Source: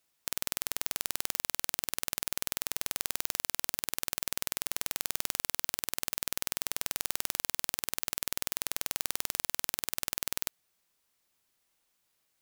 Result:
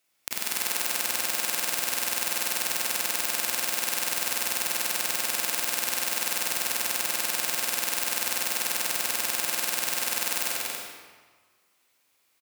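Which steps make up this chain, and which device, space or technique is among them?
stadium PA (HPF 170 Hz 6 dB/oct; bell 2300 Hz +4 dB 0.59 oct; loudspeakers at several distances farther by 65 m -4 dB, 95 m -6 dB; reverb RT60 1.6 s, pre-delay 30 ms, DRR -3 dB); gain +1 dB

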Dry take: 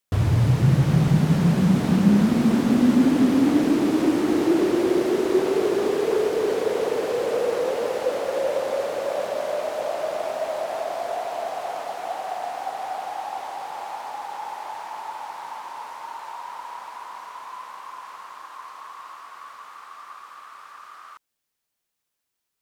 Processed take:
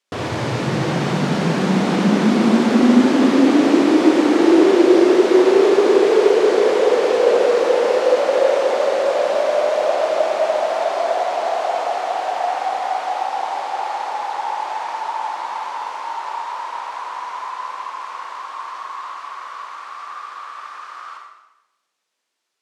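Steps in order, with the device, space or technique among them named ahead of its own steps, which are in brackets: supermarket ceiling speaker (BPF 310–6500 Hz; reverb RT60 0.95 s, pre-delay 38 ms, DRR 1 dB); gain +6.5 dB

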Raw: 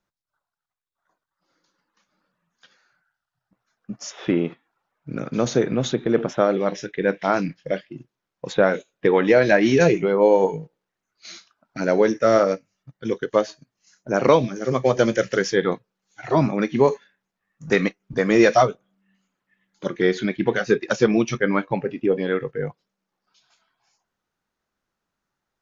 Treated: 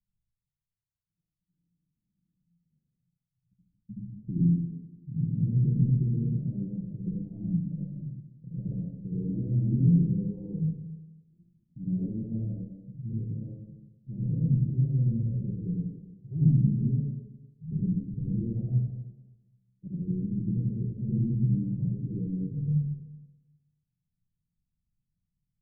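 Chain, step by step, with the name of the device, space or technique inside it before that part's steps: club heard from the street (limiter -9.5 dBFS, peak gain reduction 6.5 dB; LPF 150 Hz 24 dB/oct; reverb RT60 1.1 s, pre-delay 65 ms, DRR -7.5 dB)

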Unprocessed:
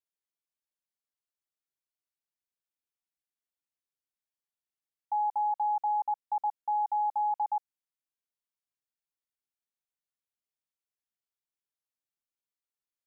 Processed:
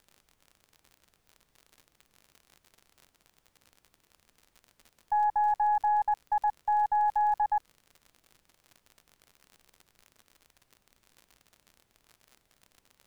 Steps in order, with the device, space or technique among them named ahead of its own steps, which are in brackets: record under a worn stylus (tracing distortion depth 0.029 ms; crackle 56/s -44 dBFS; pink noise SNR 39 dB); gain +3 dB

